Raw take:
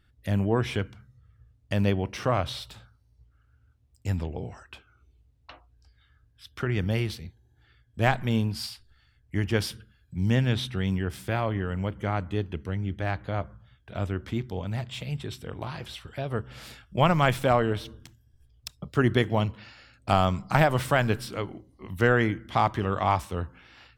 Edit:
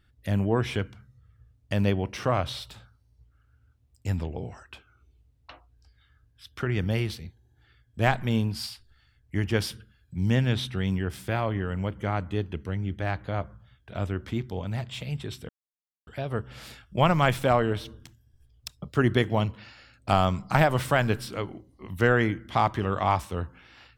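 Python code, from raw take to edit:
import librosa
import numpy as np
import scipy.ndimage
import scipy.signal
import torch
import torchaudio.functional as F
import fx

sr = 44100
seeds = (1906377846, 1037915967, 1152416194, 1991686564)

y = fx.edit(x, sr, fx.silence(start_s=15.49, length_s=0.58), tone=tone)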